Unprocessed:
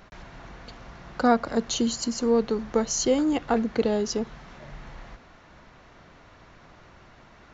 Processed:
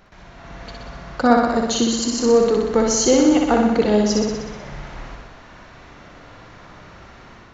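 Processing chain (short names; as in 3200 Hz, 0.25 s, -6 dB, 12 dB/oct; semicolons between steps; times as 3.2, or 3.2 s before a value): AGC gain up to 8 dB; on a send: flutter echo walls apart 10.6 m, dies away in 1.1 s; on the sum: gain -1.5 dB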